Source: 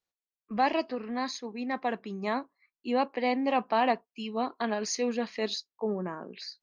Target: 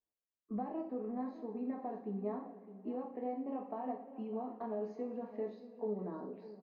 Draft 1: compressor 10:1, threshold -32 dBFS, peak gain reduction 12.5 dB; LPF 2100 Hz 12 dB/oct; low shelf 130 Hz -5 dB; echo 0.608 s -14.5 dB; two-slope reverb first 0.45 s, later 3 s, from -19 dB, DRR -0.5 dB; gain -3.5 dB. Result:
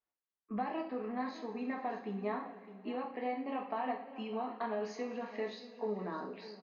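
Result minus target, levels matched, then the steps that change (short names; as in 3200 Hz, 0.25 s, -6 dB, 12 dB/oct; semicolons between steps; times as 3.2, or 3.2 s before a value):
2000 Hz band +14.5 dB
change: LPF 620 Hz 12 dB/oct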